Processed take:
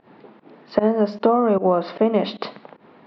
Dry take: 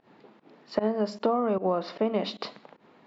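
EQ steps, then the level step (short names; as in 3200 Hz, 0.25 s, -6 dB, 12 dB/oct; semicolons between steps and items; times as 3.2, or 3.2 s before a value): LPF 4800 Hz 24 dB/oct; high shelf 3300 Hz -7.5 dB; +8.5 dB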